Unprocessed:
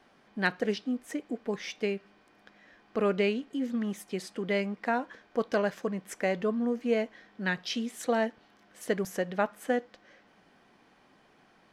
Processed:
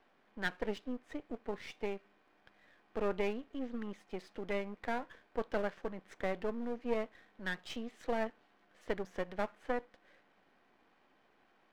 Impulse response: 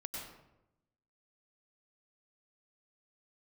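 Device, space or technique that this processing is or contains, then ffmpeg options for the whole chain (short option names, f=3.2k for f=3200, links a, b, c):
crystal radio: -af "highpass=240,lowpass=3.2k,aeval=exprs='if(lt(val(0),0),0.251*val(0),val(0))':c=same,volume=-3.5dB"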